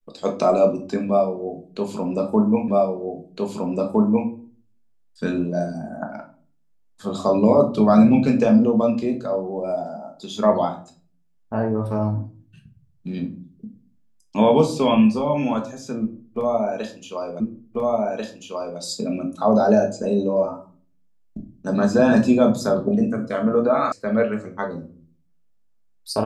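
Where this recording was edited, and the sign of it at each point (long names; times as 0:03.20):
0:02.68: the same again, the last 1.61 s
0:17.40: the same again, the last 1.39 s
0:23.92: cut off before it has died away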